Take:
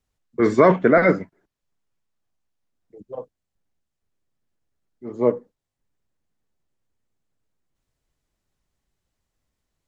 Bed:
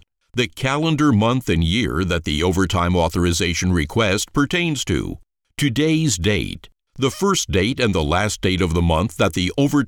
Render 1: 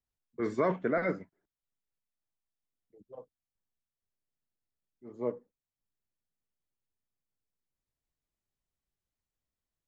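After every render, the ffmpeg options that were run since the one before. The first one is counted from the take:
-af "volume=-14.5dB"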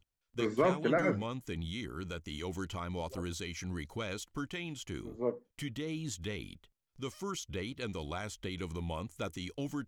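-filter_complex "[1:a]volume=-21dB[a];[0:a][a]amix=inputs=2:normalize=0"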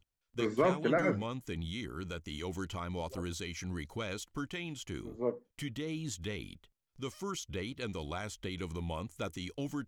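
-af anull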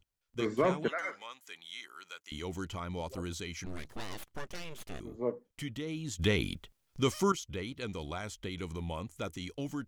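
-filter_complex "[0:a]asettb=1/sr,asplit=3[a][b][c];[a]atrim=end=0.884[d];[b]atrim=start=0.88:end=2.32,asetpts=PTS-STARTPTS,afade=t=in:d=0.004:c=qsin,afade=t=out:st=1.436:d=0.004:c=qsin,highpass=1.1k[e];[c]atrim=start=2.316[f];[d][e]acrossfade=d=0.004:c1=hsin:c2=qsin[g];[g][f]acrossfade=d=0.004:c1=qsin:c2=hsin,asplit=3[h][i][j];[h]afade=t=out:st=3.65:d=0.02[k];[i]aeval=exprs='abs(val(0))':c=same,afade=t=in:st=3.65:d=0.02,afade=t=out:st=4.99:d=0.02[l];[j]afade=t=in:st=4.99:d=0.02[m];[k][l][m]amix=inputs=3:normalize=0,asplit=3[n][o][p];[n]atrim=end=6.192[q];[o]atrim=start=6.188:end=7.322,asetpts=PTS-STARTPTS,volume=11dB[r];[p]atrim=start=7.318[s];[q][r]acrossfade=d=0.004:c1=hsin:c2=hsin[t];[t][s]acrossfade=d=0.004:c1=hsin:c2=hsin"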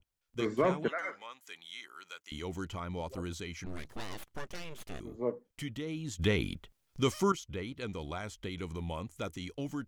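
-af "adynamicequalizer=threshold=0.00282:dfrequency=2800:dqfactor=0.7:tfrequency=2800:tqfactor=0.7:attack=5:release=100:ratio=0.375:range=3.5:mode=cutabove:tftype=highshelf"

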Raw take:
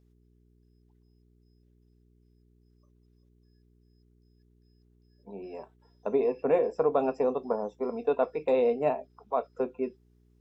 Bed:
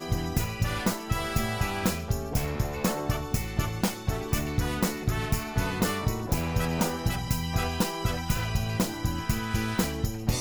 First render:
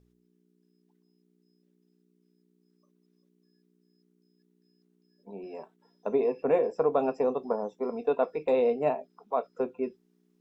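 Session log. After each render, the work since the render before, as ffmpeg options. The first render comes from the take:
-af "bandreject=f=60:t=h:w=4,bandreject=f=120:t=h:w=4"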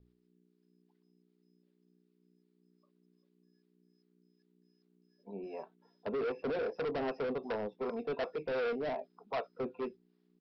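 -filter_complex "[0:a]aresample=11025,asoftclip=type=hard:threshold=-29.5dB,aresample=44100,acrossover=split=440[a][b];[a]aeval=exprs='val(0)*(1-0.5/2+0.5/2*cos(2*PI*2.6*n/s))':c=same[c];[b]aeval=exprs='val(0)*(1-0.5/2-0.5/2*cos(2*PI*2.6*n/s))':c=same[d];[c][d]amix=inputs=2:normalize=0"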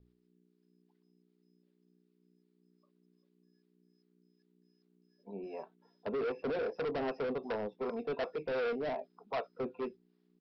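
-af anull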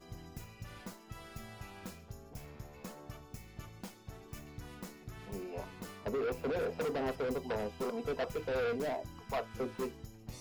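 -filter_complex "[1:a]volume=-20dB[a];[0:a][a]amix=inputs=2:normalize=0"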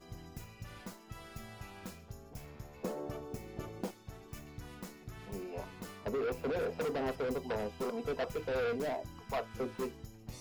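-filter_complex "[0:a]asettb=1/sr,asplit=3[a][b][c];[a]atrim=end=2.834[d];[b]atrim=start=2.83:end=3.91,asetpts=PTS-STARTPTS,afade=t=in:d=0.004:c=qsin,afade=t=out:st=1.076:d=0.004:c=qsin,equalizer=f=430:w=0.72:g=14.5[e];[c]atrim=start=3.906[f];[d][e]acrossfade=d=0.004:c1=hsin:c2=qsin[g];[g][f]acrossfade=d=0.004:c1=qsin:c2=hsin"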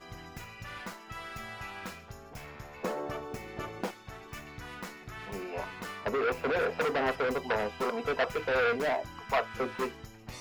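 -af "equalizer=f=1.7k:t=o:w=2.9:g=12.5"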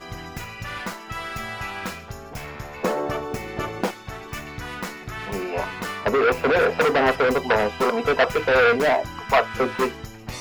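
-af "volume=10.5dB"

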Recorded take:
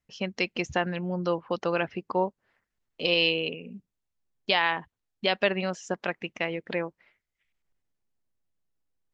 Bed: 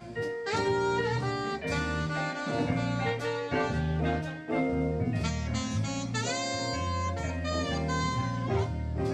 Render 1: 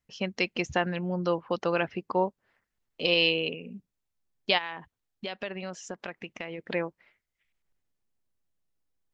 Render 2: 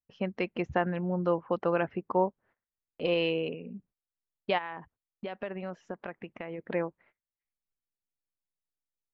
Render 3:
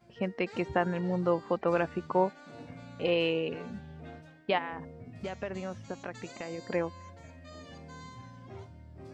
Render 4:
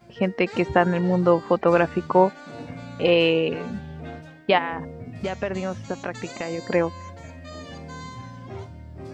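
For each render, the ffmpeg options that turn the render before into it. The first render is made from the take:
-filter_complex "[0:a]asplit=3[a][b][c];[a]afade=t=out:st=4.57:d=0.02[d];[b]acompressor=threshold=-36dB:ratio=2.5:attack=3.2:release=140:knee=1:detection=peak,afade=t=in:st=4.57:d=0.02,afade=t=out:st=6.58:d=0.02[e];[c]afade=t=in:st=6.58:d=0.02[f];[d][e][f]amix=inputs=3:normalize=0"
-af "agate=range=-16dB:threshold=-59dB:ratio=16:detection=peak,lowpass=1.6k"
-filter_complex "[1:a]volume=-17.5dB[a];[0:a][a]amix=inputs=2:normalize=0"
-af "volume=9.5dB"

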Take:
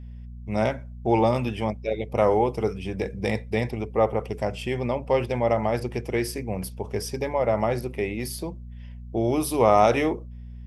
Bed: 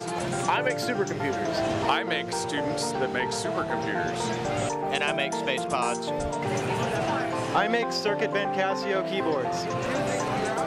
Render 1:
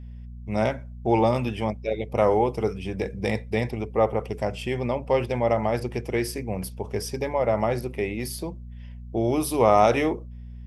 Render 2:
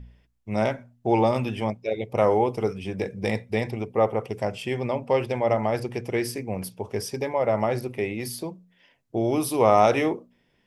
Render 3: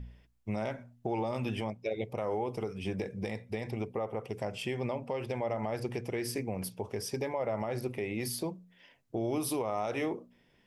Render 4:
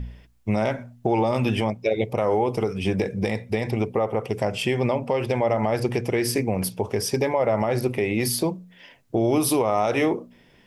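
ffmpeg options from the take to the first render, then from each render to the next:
-af anull
-af "bandreject=f=60:t=h:w=4,bandreject=f=120:t=h:w=4,bandreject=f=180:t=h:w=4,bandreject=f=240:t=h:w=4"
-af "acompressor=threshold=-23dB:ratio=6,alimiter=limit=-23dB:level=0:latency=1:release=323"
-af "volume=11.5dB"

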